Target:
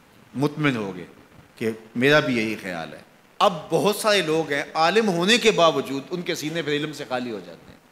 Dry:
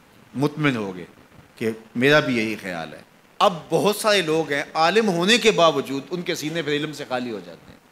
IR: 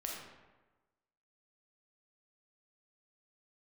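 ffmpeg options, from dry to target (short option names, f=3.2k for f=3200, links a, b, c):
-filter_complex "[0:a]asplit=2[a][b];[1:a]atrim=start_sample=2205,adelay=82[c];[b][c]afir=irnorm=-1:irlink=0,volume=-21.5dB[d];[a][d]amix=inputs=2:normalize=0,volume=-1dB"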